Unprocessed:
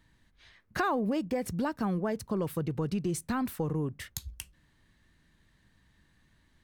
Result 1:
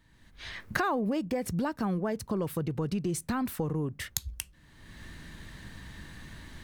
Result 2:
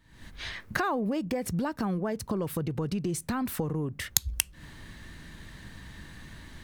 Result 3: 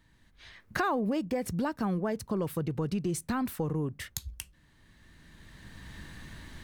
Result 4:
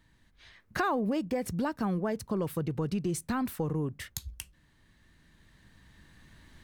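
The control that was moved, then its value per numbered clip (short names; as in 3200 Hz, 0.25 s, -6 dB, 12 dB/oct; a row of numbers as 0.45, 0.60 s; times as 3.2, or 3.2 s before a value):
recorder AGC, rising by: 33, 81, 13, 5.3 dB/s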